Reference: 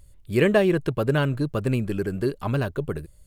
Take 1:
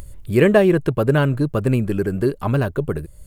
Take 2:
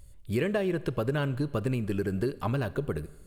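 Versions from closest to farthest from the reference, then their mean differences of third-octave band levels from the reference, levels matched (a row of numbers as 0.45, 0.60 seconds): 1, 2; 1.0, 3.0 decibels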